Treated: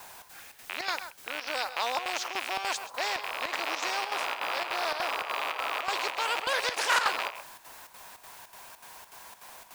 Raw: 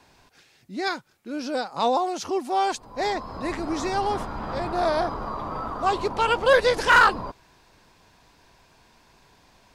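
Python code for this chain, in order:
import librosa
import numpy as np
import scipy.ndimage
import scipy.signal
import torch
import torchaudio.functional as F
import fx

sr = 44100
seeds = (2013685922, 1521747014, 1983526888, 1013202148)

p1 = fx.rattle_buzz(x, sr, strikes_db=-43.0, level_db=-22.0)
p2 = fx.env_lowpass(p1, sr, base_hz=3000.0, full_db=-19.5)
p3 = scipy.signal.sosfilt(scipy.signal.butter(4, 660.0, 'highpass', fs=sr, output='sos'), p2)
p4 = fx.high_shelf(p3, sr, hz=3100.0, db=-11.0)
p5 = fx.level_steps(p4, sr, step_db=19)
p6 = p4 + (p5 * librosa.db_to_amplitude(-0.5))
p7 = fx.quant_dither(p6, sr, seeds[0], bits=10, dither='triangular')
p8 = fx.chopper(p7, sr, hz=3.4, depth_pct=65, duty_pct=75)
p9 = p8 + fx.echo_single(p8, sr, ms=130, db=-19.0, dry=0)
p10 = fx.spectral_comp(p9, sr, ratio=2.0)
y = p10 * librosa.db_to_amplitude(-8.5)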